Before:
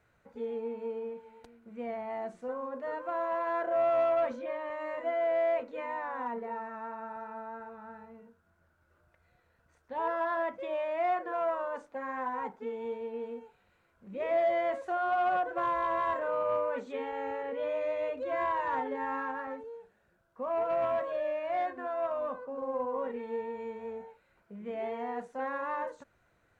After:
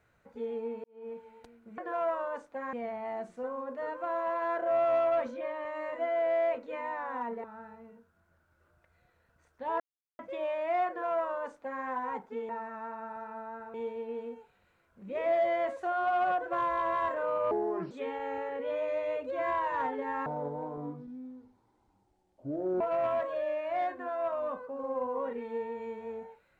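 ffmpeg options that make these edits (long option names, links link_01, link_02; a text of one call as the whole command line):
ffmpeg -i in.wav -filter_complex "[0:a]asplit=13[link_01][link_02][link_03][link_04][link_05][link_06][link_07][link_08][link_09][link_10][link_11][link_12][link_13];[link_01]atrim=end=0.84,asetpts=PTS-STARTPTS,afade=type=out:start_time=0.836:duration=0.004:curve=hsin[link_14];[link_02]atrim=start=0.84:end=1.782,asetpts=PTS-STARTPTS,afade=type=in:duration=0.28:curve=qua[link_15];[link_03]atrim=start=11.178:end=12.132[link_16];[link_04]atrim=start=1.778:end=6.492[link_17];[link_05]atrim=start=7.738:end=10.1,asetpts=PTS-STARTPTS,afade=type=out:start_time=2.358:duration=0.004:curve=hsin[link_18];[link_06]atrim=start=10.1:end=10.49,asetpts=PTS-STARTPTS,volume=0[link_19];[link_07]atrim=start=10.49:end=12.792,asetpts=PTS-STARTPTS,afade=type=in:duration=0.004:curve=hsin[link_20];[link_08]atrim=start=6.488:end=7.742[link_21];[link_09]atrim=start=12.788:end=16.564[link_22];[link_10]atrim=start=16.56:end=16.84,asetpts=PTS-STARTPTS,asetrate=30870,aresample=44100[link_23];[link_11]atrim=start=16.836:end=19.194[link_24];[link_12]atrim=start=19.19:end=20.59,asetpts=PTS-STARTPTS,asetrate=24255,aresample=44100[link_25];[link_13]atrim=start=20.586[link_26];[link_14][link_15]concat=n=2:v=0:a=1[link_27];[link_27][link_16]acrossfade=duration=0.004:curve1=hsin:curve2=hsin[link_28];[link_28][link_17]acrossfade=duration=0.004:curve1=hsin:curve2=hsin[link_29];[link_18][link_19][link_20]concat=n=3:v=0:a=1[link_30];[link_29][link_30]acrossfade=duration=0.004:curve1=hsin:curve2=hsin[link_31];[link_31][link_21]acrossfade=duration=0.004:curve1=hsin:curve2=hsin[link_32];[link_32][link_22]acrossfade=duration=0.004:curve1=hsin:curve2=hsin[link_33];[link_33][link_23]acrossfade=duration=0.004:curve1=hsin:curve2=hsin[link_34];[link_34][link_24]acrossfade=duration=0.004:curve1=hsin:curve2=hsin[link_35];[link_35][link_25]acrossfade=duration=0.004:curve1=hsin:curve2=hsin[link_36];[link_36][link_26]acrossfade=duration=0.004:curve1=hsin:curve2=hsin" out.wav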